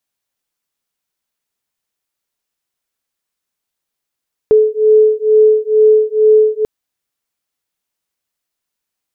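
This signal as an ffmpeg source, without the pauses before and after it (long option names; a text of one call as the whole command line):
ffmpeg -f lavfi -i "aevalsrc='0.316*(sin(2*PI*430*t)+sin(2*PI*432.2*t))':duration=2.14:sample_rate=44100" out.wav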